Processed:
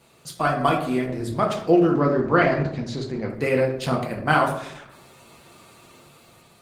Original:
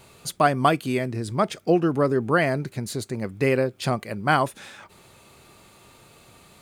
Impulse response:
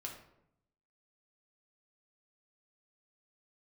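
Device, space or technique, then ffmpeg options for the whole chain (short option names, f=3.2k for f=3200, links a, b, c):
far-field microphone of a smart speaker: -filter_complex "[0:a]asettb=1/sr,asplit=3[a][b][c];[a]atrim=end=1.904[d];[b]atrim=start=1.9:end=3.3,asetpts=PTS-STARTPTS,afade=t=in:d=0.004:c=qsin,afade=t=out:st=1.396:d=0.004:c=qsin,lowpass=f=5.7k:w=0.5412,lowpass=f=5.7k:w=1.3066[e];[c]atrim=start=3.296[f];[d][e]acrossfade=d=0.004:c1=hsin:c2=qsin[g];[g][f]acrossfade=d=0.004:c1=qsin:c2=hsin[h];[1:a]atrim=start_sample=2205[i];[h][i]afir=irnorm=-1:irlink=0,highpass=110,dynaudnorm=f=400:g=5:m=5.5dB" -ar 48000 -c:a libopus -b:a 16k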